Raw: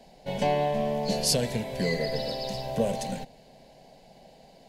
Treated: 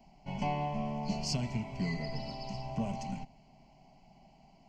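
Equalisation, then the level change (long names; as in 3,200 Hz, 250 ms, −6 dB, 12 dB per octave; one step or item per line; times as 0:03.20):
head-to-tape spacing loss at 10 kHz 21 dB
high-shelf EQ 5,600 Hz +8 dB
phaser with its sweep stopped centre 2,500 Hz, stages 8
−1.5 dB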